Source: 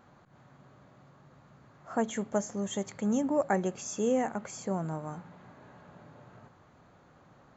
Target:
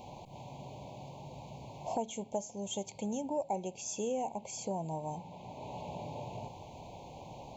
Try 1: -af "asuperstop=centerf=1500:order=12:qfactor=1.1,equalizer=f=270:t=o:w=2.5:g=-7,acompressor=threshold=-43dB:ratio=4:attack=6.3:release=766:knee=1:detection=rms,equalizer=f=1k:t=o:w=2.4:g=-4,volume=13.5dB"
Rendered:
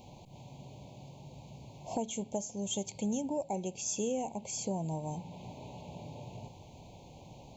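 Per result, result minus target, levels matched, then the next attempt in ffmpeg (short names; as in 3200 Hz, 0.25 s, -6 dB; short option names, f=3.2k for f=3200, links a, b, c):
1000 Hz band -6.5 dB; compressor: peak gain reduction -5 dB
-af "asuperstop=centerf=1500:order=12:qfactor=1.1,equalizer=f=270:t=o:w=2.5:g=-7,acompressor=threshold=-43dB:ratio=4:attack=6.3:release=766:knee=1:detection=rms,equalizer=f=1k:t=o:w=2.4:g=4.5,volume=13.5dB"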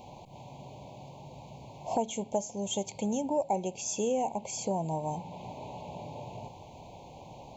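compressor: peak gain reduction -5 dB
-af "asuperstop=centerf=1500:order=12:qfactor=1.1,equalizer=f=270:t=o:w=2.5:g=-7,acompressor=threshold=-50dB:ratio=4:attack=6.3:release=766:knee=1:detection=rms,equalizer=f=1k:t=o:w=2.4:g=4.5,volume=13.5dB"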